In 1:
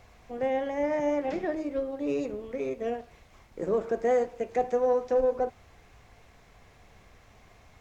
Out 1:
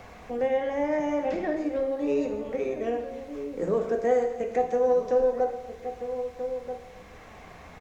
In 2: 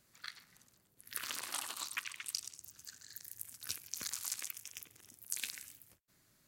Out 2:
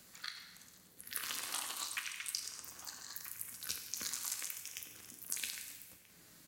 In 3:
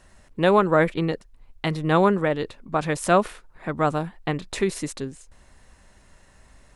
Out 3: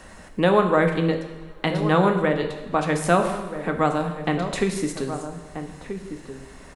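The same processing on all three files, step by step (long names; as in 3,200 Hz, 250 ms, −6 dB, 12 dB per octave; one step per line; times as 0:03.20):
slap from a distant wall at 220 metres, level −13 dB
coupled-rooms reverb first 0.91 s, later 3.1 s, from −26 dB, DRR 4.5 dB
multiband upward and downward compressor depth 40%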